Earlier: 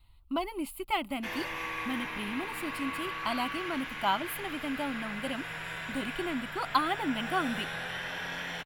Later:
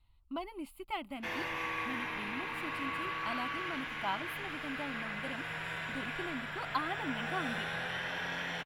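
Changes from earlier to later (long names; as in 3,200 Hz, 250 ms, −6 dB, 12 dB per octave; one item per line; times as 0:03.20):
speech −7.5 dB
master: add high-shelf EQ 6,200 Hz −8 dB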